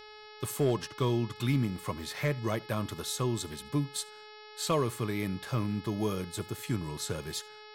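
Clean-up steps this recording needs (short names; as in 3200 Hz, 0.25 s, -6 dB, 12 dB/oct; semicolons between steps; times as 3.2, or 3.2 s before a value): clip repair -19 dBFS; de-hum 425.6 Hz, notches 13; inverse comb 75 ms -24 dB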